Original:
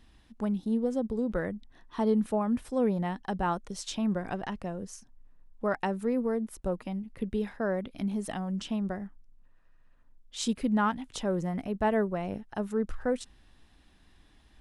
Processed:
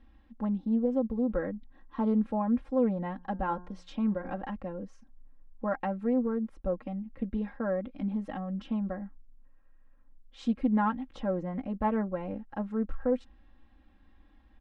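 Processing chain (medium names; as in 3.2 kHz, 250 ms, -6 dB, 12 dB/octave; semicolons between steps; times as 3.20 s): Bessel low-pass 1.6 kHz, order 2; comb 3.7 ms, depth 89%; 3.13–4.38 s: de-hum 178.1 Hz, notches 10; loudspeaker Doppler distortion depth 0.11 ms; trim -3 dB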